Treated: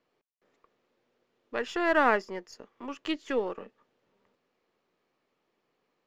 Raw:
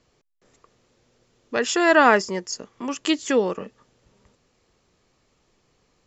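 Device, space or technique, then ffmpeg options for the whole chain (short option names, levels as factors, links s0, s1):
crystal radio: -af "highpass=250,lowpass=3100,aeval=exprs='if(lt(val(0),0),0.708*val(0),val(0))':c=same,volume=0.447"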